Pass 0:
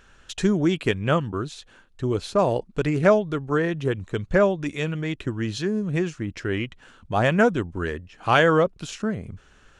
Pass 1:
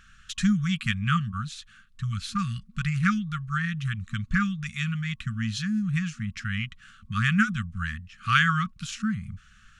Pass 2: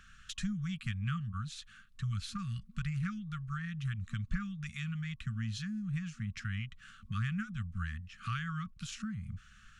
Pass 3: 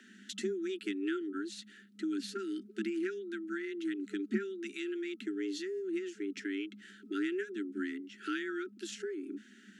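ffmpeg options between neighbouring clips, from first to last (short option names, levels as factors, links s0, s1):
-af "afftfilt=real='re*(1-between(b*sr/4096,230,1100))':imag='im*(1-between(b*sr/4096,230,1100))':win_size=4096:overlap=0.75"
-filter_complex "[0:a]acrossover=split=120[s0][s1];[s1]acompressor=threshold=0.0126:ratio=4[s2];[s0][s2]amix=inputs=2:normalize=0,volume=0.708"
-af "afreqshift=190"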